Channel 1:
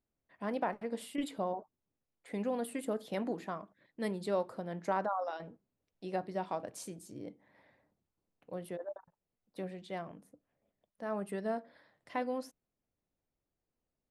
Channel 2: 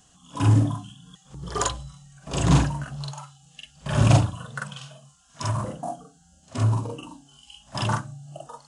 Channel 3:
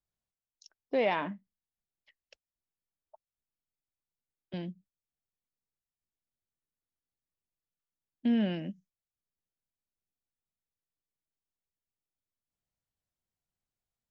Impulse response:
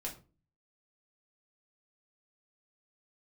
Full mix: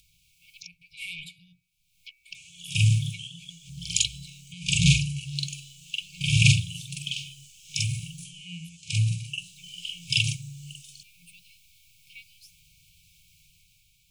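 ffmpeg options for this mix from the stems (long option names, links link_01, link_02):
-filter_complex "[0:a]volume=-6dB[link_01];[1:a]highpass=frequency=250:poles=1,adelay=2350,volume=-0.5dB[link_02];[2:a]bandreject=frequency=126.4:width_type=h:width=4,bandreject=frequency=252.8:width_type=h:width=4,bandreject=frequency=379.2:width_type=h:width=4,bandreject=frequency=505.6:width_type=h:width=4,bandreject=frequency=632:width_type=h:width=4,bandreject=frequency=758.4:width_type=h:width=4,bandreject=frequency=884.8:width_type=h:width=4,bandreject=frequency=1011.2:width_type=h:width=4,bandreject=frequency=1137.6:width_type=h:width=4,bandreject=frequency=1264:width_type=h:width=4,bandreject=frequency=1390.4:width_type=h:width=4,bandreject=frequency=1516.8:width_type=h:width=4,bandreject=frequency=1643.2:width_type=h:width=4,bandreject=frequency=1769.6:width_type=h:width=4,bandreject=frequency=1896:width_type=h:width=4,bandreject=frequency=2022.4:width_type=h:width=4,bandreject=frequency=2148.8:width_type=h:width=4,bandreject=frequency=2275.2:width_type=h:width=4,bandreject=frequency=2401.6:width_type=h:width=4,bandreject=frequency=2528:width_type=h:width=4,bandreject=frequency=2654.4:width_type=h:width=4,acompressor=mode=upward:threshold=-30dB:ratio=2.5,asoftclip=type=tanh:threshold=-22dB,volume=-8dB[link_03];[link_01][link_02][link_03]amix=inputs=3:normalize=0,afftfilt=real='re*(1-between(b*sr/4096,180,2200))':imag='im*(1-between(b*sr/4096,180,2200))':win_size=4096:overlap=0.75,equalizer=frequency=1200:width=0.51:gain=14,dynaudnorm=framelen=120:gausssize=11:maxgain=5.5dB"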